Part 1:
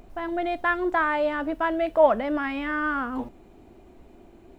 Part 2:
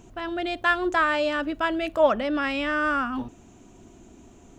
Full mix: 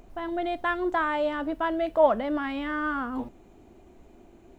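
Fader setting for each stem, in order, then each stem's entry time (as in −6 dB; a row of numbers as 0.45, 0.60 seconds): −2.5, −17.5 decibels; 0.00, 0.00 seconds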